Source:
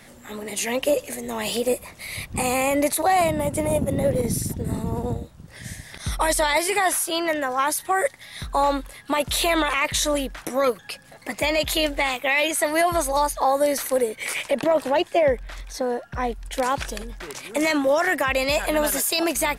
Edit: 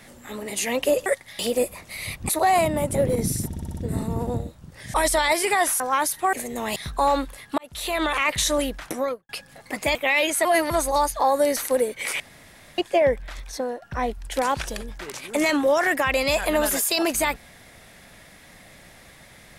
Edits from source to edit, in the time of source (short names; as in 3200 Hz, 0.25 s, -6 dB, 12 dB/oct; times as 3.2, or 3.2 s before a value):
1.06–1.49 swap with 7.99–8.32
2.39–2.92 cut
3.58–4.01 cut
4.53 stutter 0.06 s, 6 plays
5.7–6.19 cut
7.05–7.46 cut
9.14–9.76 fade in
10.45–10.85 studio fade out
11.51–12.16 cut
12.66–12.91 reverse
14.41–14.99 room tone
15.72–16.03 fade out, to -9 dB